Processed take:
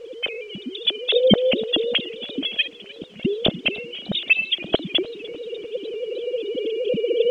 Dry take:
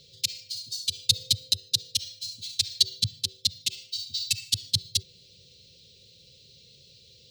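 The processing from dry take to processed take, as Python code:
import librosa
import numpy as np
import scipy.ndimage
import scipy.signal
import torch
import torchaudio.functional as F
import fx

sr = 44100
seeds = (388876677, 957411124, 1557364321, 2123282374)

p1 = fx.sine_speech(x, sr)
p2 = fx.recorder_agc(p1, sr, target_db=-10.0, rise_db_per_s=6.7, max_gain_db=30)
p3 = fx.gate_flip(p2, sr, shuts_db=-28.0, range_db=-25, at=(2.67, 3.25))
p4 = fx.low_shelf_res(p3, sr, hz=760.0, db=7.5, q=3.0)
p5 = fx.quant_dither(p4, sr, seeds[0], bits=8, dither='triangular')
p6 = p4 + (p5 * librosa.db_to_amplitude(-5.0))
p7 = fx.air_absorb(p6, sr, metres=120.0)
y = fx.echo_warbled(p7, sr, ms=300, feedback_pct=68, rate_hz=2.8, cents=135, wet_db=-21)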